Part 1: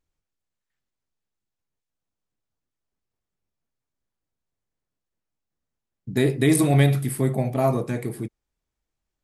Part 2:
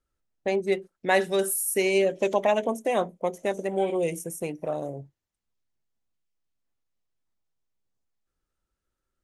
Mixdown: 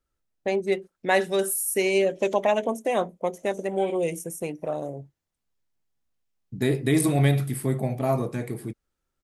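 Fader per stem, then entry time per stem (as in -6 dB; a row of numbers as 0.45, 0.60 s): -3.0, +0.5 dB; 0.45, 0.00 s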